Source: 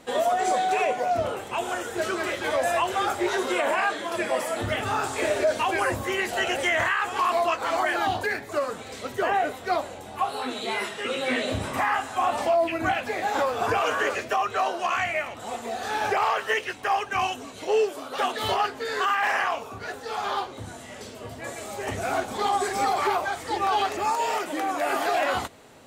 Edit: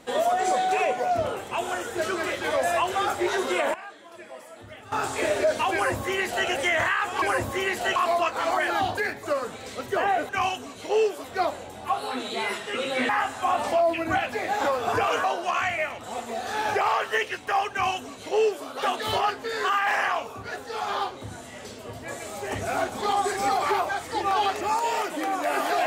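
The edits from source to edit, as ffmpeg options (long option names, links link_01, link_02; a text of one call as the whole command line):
ffmpeg -i in.wav -filter_complex "[0:a]asplit=9[link_01][link_02][link_03][link_04][link_05][link_06][link_07][link_08][link_09];[link_01]atrim=end=3.74,asetpts=PTS-STARTPTS,afade=type=out:start_time=3.6:duration=0.14:curve=log:silence=0.149624[link_10];[link_02]atrim=start=3.74:end=4.92,asetpts=PTS-STARTPTS,volume=-16.5dB[link_11];[link_03]atrim=start=4.92:end=7.222,asetpts=PTS-STARTPTS,afade=type=in:duration=0.14:curve=log:silence=0.149624[link_12];[link_04]atrim=start=5.738:end=6.482[link_13];[link_05]atrim=start=7.218:end=9.552[link_14];[link_06]atrim=start=17.068:end=18.022[link_15];[link_07]atrim=start=9.548:end=11.402[link_16];[link_08]atrim=start=11.828:end=13.982[link_17];[link_09]atrim=start=14.598[link_18];[link_10][link_11][link_12]concat=n=3:v=0:a=1[link_19];[link_19][link_13]acrossfade=duration=0.004:curve1=hsin:curve2=hsin[link_20];[link_20][link_14]acrossfade=duration=0.004:curve1=hsin:curve2=hsin[link_21];[link_21][link_15]acrossfade=duration=0.004:curve1=hsin:curve2=hsin[link_22];[link_22][link_16]acrossfade=duration=0.004:curve1=hsin:curve2=hsin[link_23];[link_23][link_17]acrossfade=duration=0.004:curve1=hsin:curve2=hsin[link_24];[link_24][link_18]acrossfade=duration=0.004:curve1=hsin:curve2=hsin" out.wav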